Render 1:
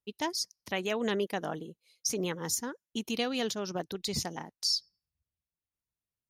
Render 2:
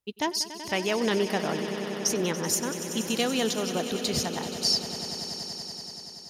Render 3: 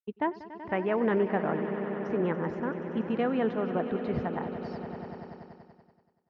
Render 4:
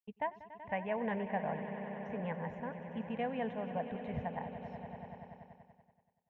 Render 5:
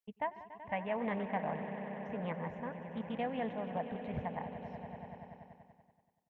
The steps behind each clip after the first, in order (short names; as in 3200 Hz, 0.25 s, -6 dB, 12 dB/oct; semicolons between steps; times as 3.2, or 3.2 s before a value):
swelling echo 95 ms, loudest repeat 5, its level -14 dB; gain +4.5 dB
LPF 1800 Hz 24 dB/oct; expander -39 dBFS
fixed phaser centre 1300 Hz, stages 6; gain -4 dB
frequency-shifting echo 0.144 s, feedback 37%, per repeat +58 Hz, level -18 dB; Doppler distortion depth 0.28 ms